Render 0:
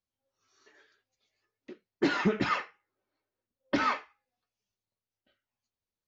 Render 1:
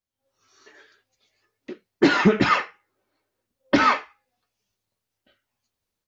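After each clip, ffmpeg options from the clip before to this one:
-af "dynaudnorm=f=140:g=3:m=3.16"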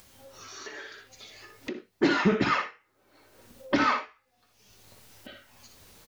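-af "aecho=1:1:59|80:0.422|0.168,acompressor=mode=upward:threshold=0.1:ratio=2.5,volume=0.473"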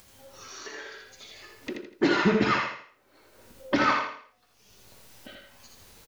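-af "aecho=1:1:82|164|246|328:0.562|0.191|0.065|0.0221"

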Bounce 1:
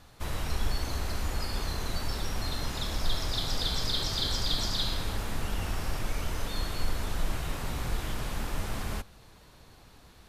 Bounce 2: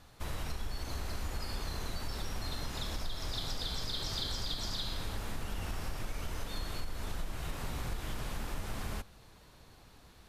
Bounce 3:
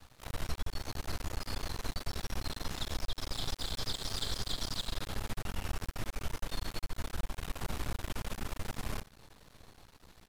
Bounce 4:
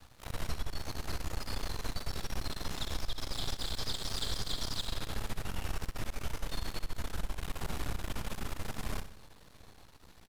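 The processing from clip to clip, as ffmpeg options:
-af "acompressor=threshold=0.0355:ratio=6,volume=0.708"
-af "aecho=1:1:90:0.141,aeval=exprs='max(val(0),0)':c=same,volume=1.5"
-af "aecho=1:1:63|126|189|252|315|378:0.237|0.128|0.0691|0.0373|0.0202|0.0109"

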